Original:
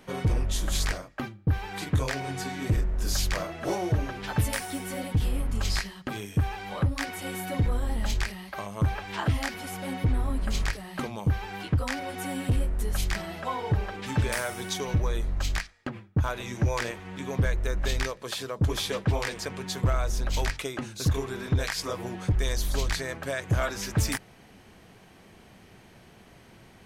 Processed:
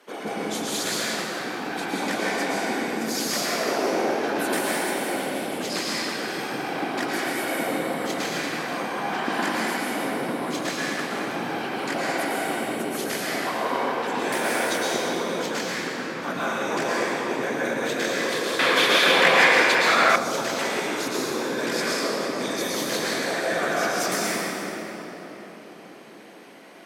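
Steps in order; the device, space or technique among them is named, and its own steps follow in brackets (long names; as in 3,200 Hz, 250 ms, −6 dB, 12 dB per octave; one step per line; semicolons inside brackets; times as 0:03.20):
whispering ghost (random phases in short frames; high-pass filter 280 Hz 24 dB per octave; convolution reverb RT60 4.3 s, pre-delay 105 ms, DRR −7.5 dB)
0:18.59–0:20.16: drawn EQ curve 340 Hz 0 dB, 2,200 Hz +15 dB, 5,600 Hz +2 dB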